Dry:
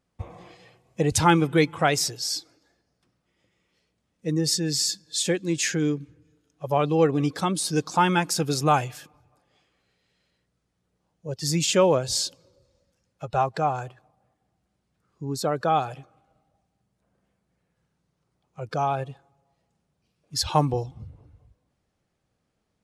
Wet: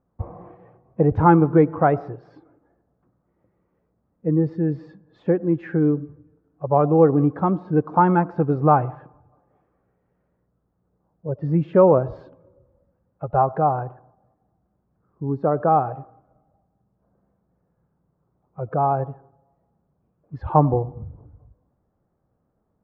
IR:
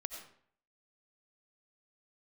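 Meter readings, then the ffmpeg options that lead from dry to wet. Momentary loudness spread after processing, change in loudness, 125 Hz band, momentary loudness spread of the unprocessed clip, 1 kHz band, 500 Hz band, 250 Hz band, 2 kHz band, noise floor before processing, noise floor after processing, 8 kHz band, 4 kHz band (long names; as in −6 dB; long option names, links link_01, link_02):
19 LU, +4.0 dB, +5.5 dB, 17 LU, +4.5 dB, +5.5 dB, +5.5 dB, −5.5 dB, −77 dBFS, −72 dBFS, below −40 dB, below −30 dB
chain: -filter_complex "[0:a]lowpass=frequency=1300:width=0.5412,lowpass=frequency=1300:width=1.3066,asplit=2[link_01][link_02];[1:a]atrim=start_sample=2205,lowpass=1200[link_03];[link_02][link_03]afir=irnorm=-1:irlink=0,volume=-11dB[link_04];[link_01][link_04]amix=inputs=2:normalize=0,volume=4dB"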